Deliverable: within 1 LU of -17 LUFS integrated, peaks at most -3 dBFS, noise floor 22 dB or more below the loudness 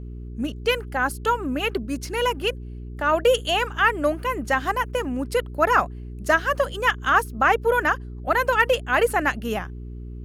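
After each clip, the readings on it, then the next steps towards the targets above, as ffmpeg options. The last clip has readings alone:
hum 60 Hz; highest harmonic 420 Hz; hum level -33 dBFS; loudness -22.5 LUFS; peak level -5.5 dBFS; loudness target -17.0 LUFS
-> -af "bandreject=f=60:t=h:w=4,bandreject=f=120:t=h:w=4,bandreject=f=180:t=h:w=4,bandreject=f=240:t=h:w=4,bandreject=f=300:t=h:w=4,bandreject=f=360:t=h:w=4,bandreject=f=420:t=h:w=4"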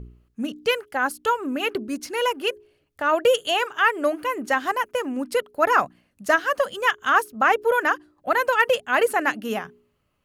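hum not found; loudness -22.5 LUFS; peak level -6.0 dBFS; loudness target -17.0 LUFS
-> -af "volume=1.88,alimiter=limit=0.708:level=0:latency=1"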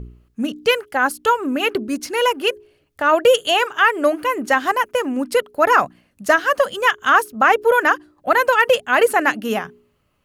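loudness -17.5 LUFS; peak level -3.0 dBFS; noise floor -64 dBFS

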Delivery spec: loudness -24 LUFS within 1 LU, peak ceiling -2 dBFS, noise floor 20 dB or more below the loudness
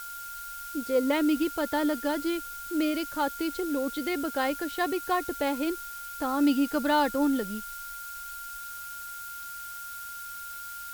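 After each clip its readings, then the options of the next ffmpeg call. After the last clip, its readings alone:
steady tone 1.4 kHz; tone level -39 dBFS; noise floor -40 dBFS; noise floor target -50 dBFS; loudness -30.0 LUFS; peak level -13.0 dBFS; loudness target -24.0 LUFS
-> -af "bandreject=f=1400:w=30"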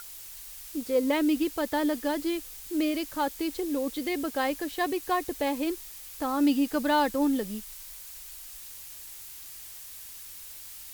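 steady tone not found; noise floor -44 dBFS; noise floor target -49 dBFS
-> -af "afftdn=nr=6:nf=-44"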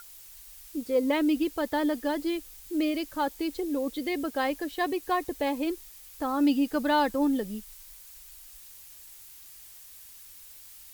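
noise floor -49 dBFS; loudness -29.0 LUFS; peak level -13.5 dBFS; loudness target -24.0 LUFS
-> -af "volume=1.78"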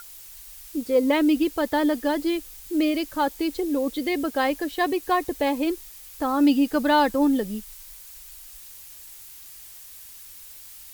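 loudness -24.0 LUFS; peak level -8.5 dBFS; noise floor -44 dBFS

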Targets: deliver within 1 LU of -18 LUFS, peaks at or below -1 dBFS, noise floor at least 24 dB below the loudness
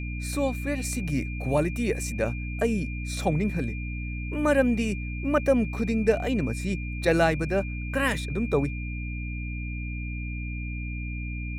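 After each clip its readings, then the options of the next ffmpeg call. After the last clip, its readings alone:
hum 60 Hz; highest harmonic 300 Hz; hum level -30 dBFS; steady tone 2.4 kHz; tone level -39 dBFS; loudness -27.5 LUFS; peak level -8.5 dBFS; loudness target -18.0 LUFS
-> -af "bandreject=f=60:t=h:w=6,bandreject=f=120:t=h:w=6,bandreject=f=180:t=h:w=6,bandreject=f=240:t=h:w=6,bandreject=f=300:t=h:w=6"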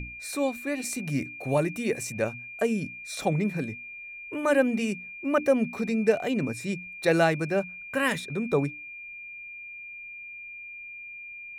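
hum not found; steady tone 2.4 kHz; tone level -39 dBFS
-> -af "bandreject=f=2400:w=30"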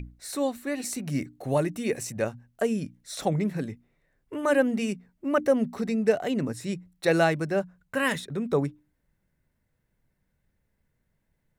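steady tone not found; loudness -28.0 LUFS; peak level -9.5 dBFS; loudness target -18.0 LUFS
-> -af "volume=3.16,alimiter=limit=0.891:level=0:latency=1"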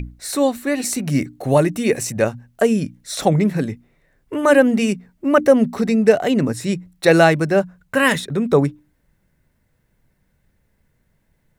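loudness -18.0 LUFS; peak level -1.0 dBFS; noise floor -65 dBFS

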